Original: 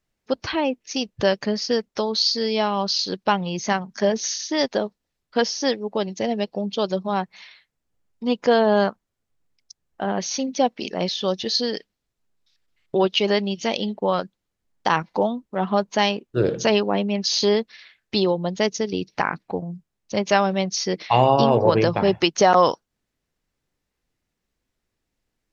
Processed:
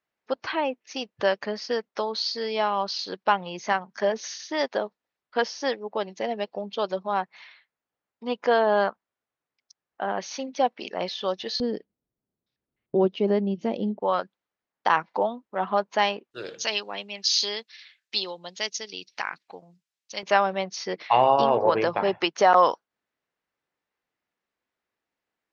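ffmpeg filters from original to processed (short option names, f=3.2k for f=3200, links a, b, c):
-af "asetnsamples=n=441:p=0,asendcmd='11.6 bandpass f 250;14 bandpass f 1200;16.31 bandpass f 4400;20.23 bandpass f 1200',bandpass=f=1.2k:t=q:w=0.64:csg=0"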